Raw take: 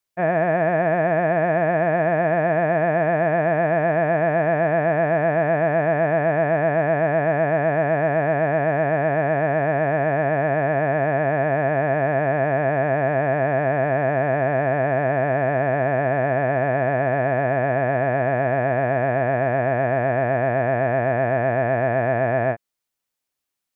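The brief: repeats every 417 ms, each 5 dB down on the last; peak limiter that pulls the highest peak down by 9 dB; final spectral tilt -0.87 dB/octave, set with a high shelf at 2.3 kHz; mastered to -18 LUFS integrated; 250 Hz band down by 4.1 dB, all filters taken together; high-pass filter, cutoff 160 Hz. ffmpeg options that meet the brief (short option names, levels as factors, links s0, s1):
-af "highpass=160,equalizer=f=250:t=o:g=-4.5,highshelf=f=2300:g=5.5,alimiter=limit=0.133:level=0:latency=1,aecho=1:1:417|834|1251|1668|2085|2502|2919:0.562|0.315|0.176|0.0988|0.0553|0.031|0.0173,volume=2.51"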